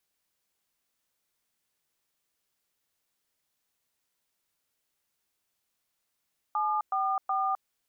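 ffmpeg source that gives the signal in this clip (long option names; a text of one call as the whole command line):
ffmpeg -f lavfi -i "aevalsrc='0.0398*clip(min(mod(t,0.371),0.259-mod(t,0.371))/0.002,0,1)*(eq(floor(t/0.371),0)*(sin(2*PI*852*mod(t,0.371))+sin(2*PI*1209*mod(t,0.371)))+eq(floor(t/0.371),1)*(sin(2*PI*770*mod(t,0.371))+sin(2*PI*1209*mod(t,0.371)))+eq(floor(t/0.371),2)*(sin(2*PI*770*mod(t,0.371))+sin(2*PI*1209*mod(t,0.371))))':duration=1.113:sample_rate=44100" out.wav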